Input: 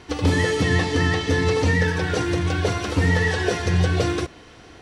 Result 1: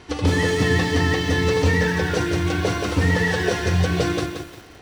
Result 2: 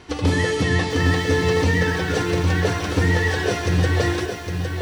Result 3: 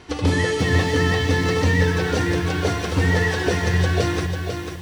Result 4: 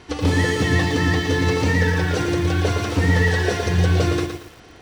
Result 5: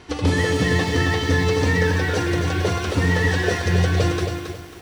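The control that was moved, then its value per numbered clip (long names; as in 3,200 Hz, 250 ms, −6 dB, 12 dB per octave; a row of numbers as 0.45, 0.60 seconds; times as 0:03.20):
feedback echo at a low word length, delay time: 176, 809, 495, 115, 272 milliseconds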